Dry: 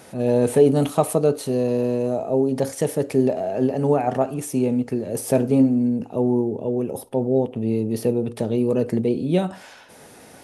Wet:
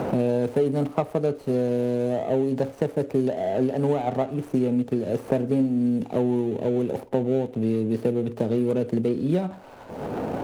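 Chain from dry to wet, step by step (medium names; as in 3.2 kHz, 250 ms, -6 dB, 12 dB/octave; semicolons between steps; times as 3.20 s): median filter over 25 samples; three bands compressed up and down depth 100%; trim -3.5 dB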